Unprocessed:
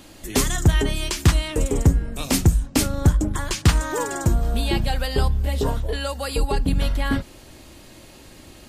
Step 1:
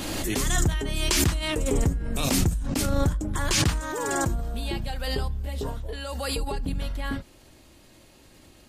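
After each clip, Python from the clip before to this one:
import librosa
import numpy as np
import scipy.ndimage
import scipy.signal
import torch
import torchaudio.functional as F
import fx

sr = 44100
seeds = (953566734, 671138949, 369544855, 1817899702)

y = fx.pre_swell(x, sr, db_per_s=22.0)
y = y * librosa.db_to_amplitude(-9.0)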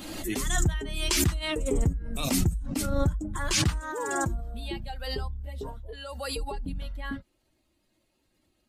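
y = fx.bin_expand(x, sr, power=1.5)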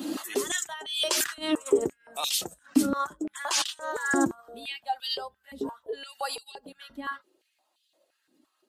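y = fx.spec_repair(x, sr, seeds[0], start_s=3.86, length_s=0.31, low_hz=2200.0, high_hz=4700.0, source='after')
y = fx.peak_eq(y, sr, hz=2200.0, db=-7.0, octaves=0.35)
y = fx.filter_held_highpass(y, sr, hz=5.8, low_hz=270.0, high_hz=3300.0)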